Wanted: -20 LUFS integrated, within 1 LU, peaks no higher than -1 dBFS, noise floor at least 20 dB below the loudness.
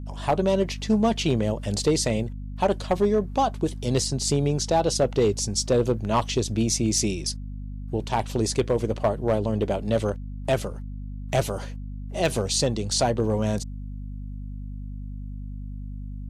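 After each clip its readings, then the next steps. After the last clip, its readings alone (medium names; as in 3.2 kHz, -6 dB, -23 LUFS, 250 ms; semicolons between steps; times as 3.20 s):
clipped samples 0.4%; clipping level -13.5 dBFS; hum 50 Hz; highest harmonic 250 Hz; hum level -32 dBFS; loudness -24.5 LUFS; peak level -13.5 dBFS; loudness target -20.0 LUFS
-> clip repair -13.5 dBFS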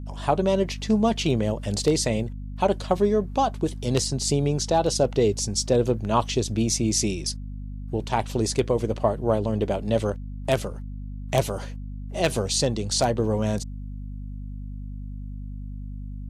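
clipped samples 0.0%; hum 50 Hz; highest harmonic 250 Hz; hum level -32 dBFS
-> hum notches 50/100/150/200/250 Hz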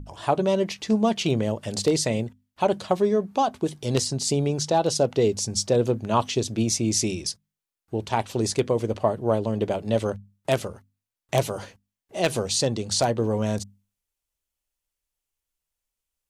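hum not found; loudness -24.5 LUFS; peak level -4.5 dBFS; loudness target -20.0 LUFS
-> trim +4.5 dB; peak limiter -1 dBFS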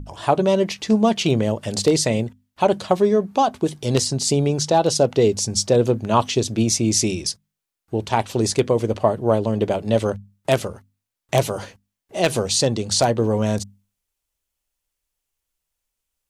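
loudness -20.5 LUFS; peak level -1.0 dBFS; noise floor -82 dBFS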